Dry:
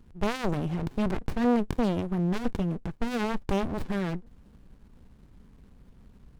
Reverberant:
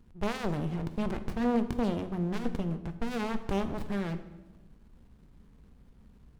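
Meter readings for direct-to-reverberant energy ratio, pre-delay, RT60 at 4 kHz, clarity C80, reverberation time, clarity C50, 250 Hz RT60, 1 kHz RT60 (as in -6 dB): 9.5 dB, 8 ms, 0.80 s, 14.5 dB, 1.1 s, 12.5 dB, 1.4 s, 1.0 s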